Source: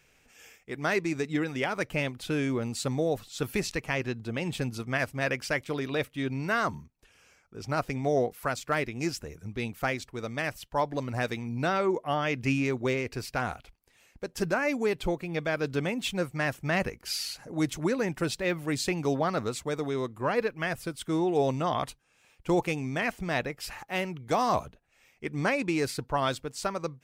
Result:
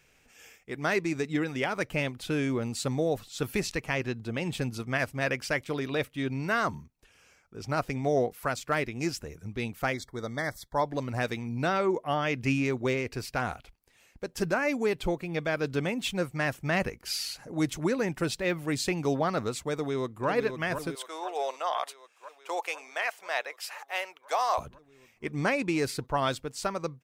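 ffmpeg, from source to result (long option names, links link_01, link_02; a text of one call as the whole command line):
ffmpeg -i in.wav -filter_complex "[0:a]asplit=3[link_01][link_02][link_03];[link_01]afade=type=out:start_time=9.92:duration=0.02[link_04];[link_02]asuperstop=centerf=2700:order=20:qfactor=2.6,afade=type=in:start_time=9.92:duration=0.02,afade=type=out:start_time=10.84:duration=0.02[link_05];[link_03]afade=type=in:start_time=10.84:duration=0.02[link_06];[link_04][link_05][link_06]amix=inputs=3:normalize=0,asplit=2[link_07][link_08];[link_08]afade=type=in:start_time=19.73:duration=0.01,afade=type=out:start_time=20.28:duration=0.01,aecho=0:1:500|1000|1500|2000|2500|3000|3500|4000|4500|5000|5500|6000:0.446684|0.335013|0.25126|0.188445|0.141333|0.106|0.0795001|0.0596251|0.0447188|0.0335391|0.0251543|0.0188657[link_09];[link_07][link_09]amix=inputs=2:normalize=0,asettb=1/sr,asplit=3[link_10][link_11][link_12];[link_10]atrim=end=20.954[link_13];[link_11]atrim=start=20.95:end=24.58,asetpts=PTS-STARTPTS,afade=type=in:duration=0.004:curve=qsin,afade=type=out:start_time=3.626:duration=0.004:curve=qsin,highpass=frequency=580:width=0.5412,highpass=frequency=580:width=1.3066[link_14];[link_12]atrim=start=24.576[link_15];[link_13][link_14]acrossfade=duration=0.004:curve1=hsin:curve2=qsin[link_16];[link_16][link_15]acrossfade=duration=0.004:curve1=qsin:curve2=hsin" out.wav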